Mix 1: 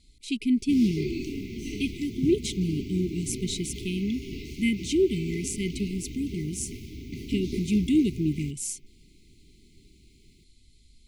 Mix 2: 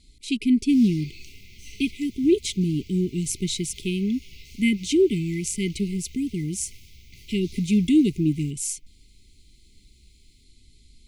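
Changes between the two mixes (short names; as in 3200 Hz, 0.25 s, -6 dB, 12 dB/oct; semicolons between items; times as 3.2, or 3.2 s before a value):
speech +4.0 dB; background: add passive tone stack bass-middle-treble 10-0-10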